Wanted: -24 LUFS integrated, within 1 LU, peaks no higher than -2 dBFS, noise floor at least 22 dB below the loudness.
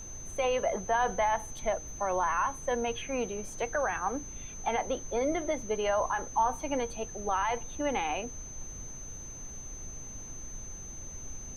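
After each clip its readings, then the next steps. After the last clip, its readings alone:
steady tone 6200 Hz; tone level -43 dBFS; noise floor -44 dBFS; noise floor target -55 dBFS; loudness -32.5 LUFS; peak -17.0 dBFS; loudness target -24.0 LUFS
-> notch 6200 Hz, Q 30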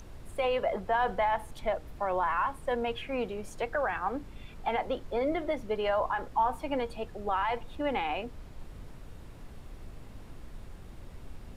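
steady tone none; noise floor -48 dBFS; noise floor target -54 dBFS
-> noise print and reduce 6 dB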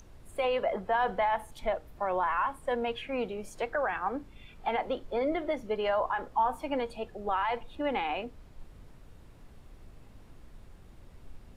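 noise floor -53 dBFS; noise floor target -54 dBFS
-> noise print and reduce 6 dB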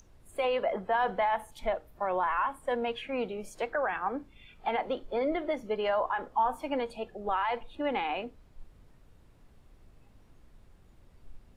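noise floor -59 dBFS; loudness -32.0 LUFS; peak -17.5 dBFS; loudness target -24.0 LUFS
-> gain +8 dB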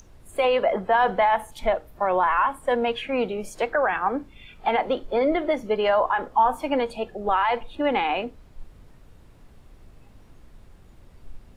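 loudness -24.0 LUFS; peak -9.5 dBFS; noise floor -51 dBFS

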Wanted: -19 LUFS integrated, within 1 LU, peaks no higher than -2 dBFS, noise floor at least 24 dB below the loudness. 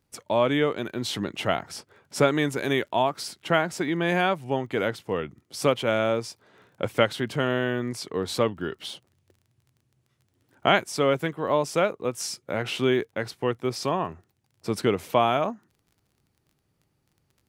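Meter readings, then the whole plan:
ticks 23/s; loudness -26.0 LUFS; peak -4.5 dBFS; loudness target -19.0 LUFS
-> de-click; gain +7 dB; limiter -2 dBFS

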